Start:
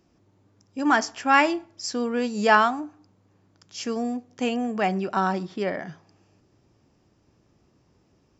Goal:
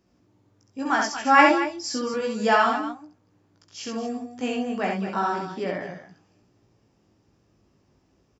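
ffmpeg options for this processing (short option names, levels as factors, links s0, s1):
-filter_complex "[0:a]flanger=delay=16.5:depth=3.5:speed=0.33,asettb=1/sr,asplit=3[s0][s1][s2];[s0]atrim=end=1.044[s3];[s1]atrim=start=1.04:end=2.14,asetpts=PTS-STARTPTS,afade=t=in:d=0.004:c=qsin,afade=t=out:st=1.096:d=0.004:c=qsin,aecho=1:1:3.5:0.87,atrim=end_sample=48510[s4];[s2]atrim=start=2.136[s5];[s3][s4]acrossfade=d=0.004:c1=hsin:c2=qsin[s6];[s6][s5]acrossfade=d=0.004:c1=qsin:c2=hsin,aecho=1:1:67.06|227.4:0.708|0.282"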